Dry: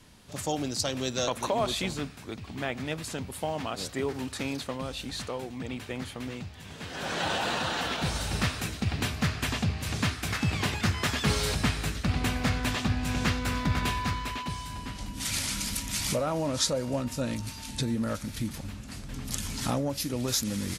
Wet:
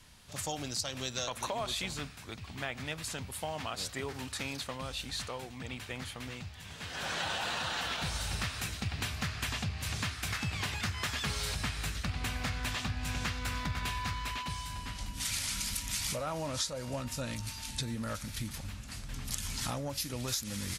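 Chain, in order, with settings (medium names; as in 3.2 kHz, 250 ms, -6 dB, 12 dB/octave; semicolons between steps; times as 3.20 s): peaking EQ 310 Hz -9.5 dB 2.3 oct; compression, threshold -31 dBFS, peak gain reduction 9 dB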